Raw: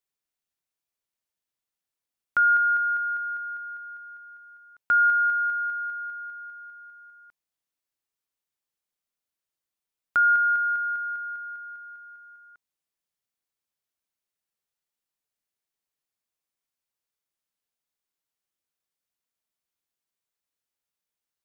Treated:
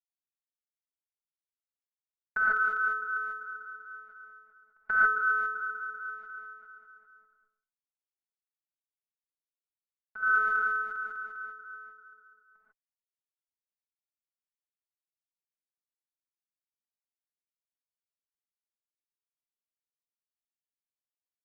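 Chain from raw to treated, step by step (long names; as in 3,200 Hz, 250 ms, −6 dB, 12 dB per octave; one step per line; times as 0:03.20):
sub-octave generator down 2 octaves, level −3 dB
gate pattern "x.x.x.xx.xx" 154 BPM −12 dB
0:07.07–0:10.48: bouncing-ball delay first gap 120 ms, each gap 0.75×, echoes 5
low-pass that shuts in the quiet parts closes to 1,300 Hz, open at −26.5 dBFS
phases set to zero 216 Hz
downward expander −59 dBFS
reverb whose tail is shaped and stops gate 170 ms rising, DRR −7.5 dB
level −2 dB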